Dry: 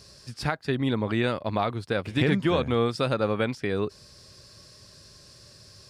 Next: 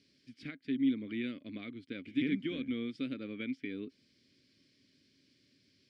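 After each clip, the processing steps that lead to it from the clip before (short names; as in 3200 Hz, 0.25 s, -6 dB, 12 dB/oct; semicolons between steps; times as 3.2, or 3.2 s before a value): vowel filter i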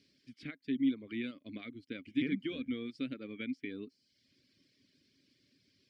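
reverb removal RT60 0.73 s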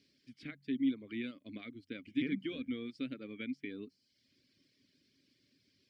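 de-hum 46.66 Hz, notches 4; gain -1.5 dB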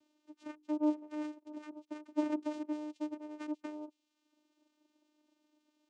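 vocoder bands 4, saw 302 Hz; gain +1 dB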